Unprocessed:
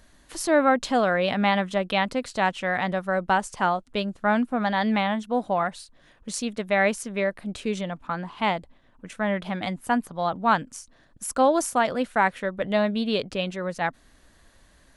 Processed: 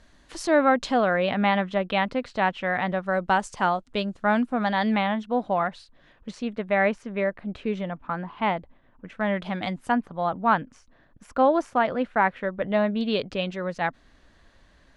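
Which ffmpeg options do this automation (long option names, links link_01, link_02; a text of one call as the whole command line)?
ffmpeg -i in.wav -af "asetnsamples=nb_out_samples=441:pad=0,asendcmd='0.94 lowpass f 3300;3.06 lowpass f 7700;4.94 lowpass f 3900;6.31 lowpass f 2400;9.21 lowpass f 6100;9.92 lowpass f 2500;13.01 lowpass f 4700',lowpass=6300" out.wav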